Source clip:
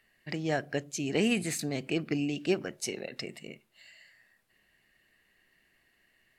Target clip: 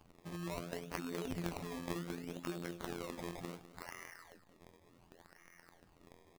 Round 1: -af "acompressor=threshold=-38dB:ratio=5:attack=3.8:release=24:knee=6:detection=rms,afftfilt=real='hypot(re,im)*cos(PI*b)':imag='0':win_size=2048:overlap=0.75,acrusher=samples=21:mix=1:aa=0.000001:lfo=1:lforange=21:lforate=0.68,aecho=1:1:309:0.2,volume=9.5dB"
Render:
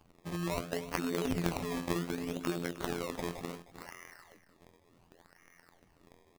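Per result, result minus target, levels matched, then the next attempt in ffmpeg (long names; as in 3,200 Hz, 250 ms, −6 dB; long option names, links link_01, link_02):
echo 106 ms late; downward compressor: peak gain reduction −7.5 dB
-af "acompressor=threshold=-38dB:ratio=5:attack=3.8:release=24:knee=6:detection=rms,afftfilt=real='hypot(re,im)*cos(PI*b)':imag='0':win_size=2048:overlap=0.75,acrusher=samples=21:mix=1:aa=0.000001:lfo=1:lforange=21:lforate=0.68,aecho=1:1:203:0.2,volume=9.5dB"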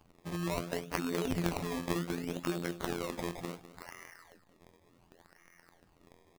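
downward compressor: peak gain reduction −7.5 dB
-af "acompressor=threshold=-47.5dB:ratio=5:attack=3.8:release=24:knee=6:detection=rms,afftfilt=real='hypot(re,im)*cos(PI*b)':imag='0':win_size=2048:overlap=0.75,acrusher=samples=21:mix=1:aa=0.000001:lfo=1:lforange=21:lforate=0.68,aecho=1:1:203:0.2,volume=9.5dB"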